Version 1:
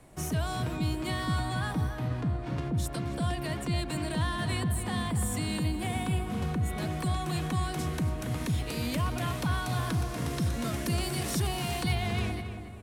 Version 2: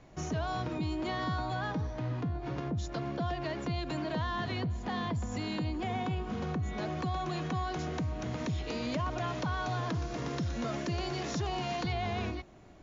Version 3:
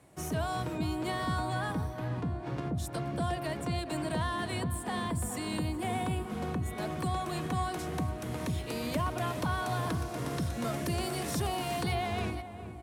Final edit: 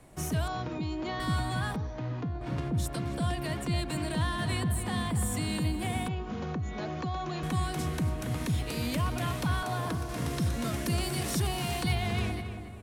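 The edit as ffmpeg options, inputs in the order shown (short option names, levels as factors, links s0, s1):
-filter_complex "[1:a]asplit=3[s0][s1][s2];[0:a]asplit=5[s3][s4][s5][s6][s7];[s3]atrim=end=0.482[s8];[s0]atrim=start=0.478:end=1.202[s9];[s4]atrim=start=1.198:end=1.762[s10];[s1]atrim=start=1.758:end=2.412[s11];[s5]atrim=start=2.408:end=6.082[s12];[s2]atrim=start=6.078:end=7.432[s13];[s6]atrim=start=7.428:end=9.632[s14];[2:a]atrim=start=9.628:end=10.092[s15];[s7]atrim=start=10.088[s16];[s8][s9]acrossfade=d=0.004:c1=hsin:c2=hsin[s17];[s17][s10]acrossfade=d=0.004:c1=hsin:c2=hsin[s18];[s18][s11]acrossfade=d=0.004:c1=hsin:c2=hsin[s19];[s19][s12]acrossfade=d=0.004:c1=hsin:c2=hsin[s20];[s20][s13]acrossfade=d=0.004:c1=hsin:c2=hsin[s21];[s21][s14]acrossfade=d=0.004:c1=hsin:c2=hsin[s22];[s22][s15]acrossfade=d=0.004:c1=hsin:c2=hsin[s23];[s23][s16]acrossfade=d=0.004:c1=hsin:c2=hsin"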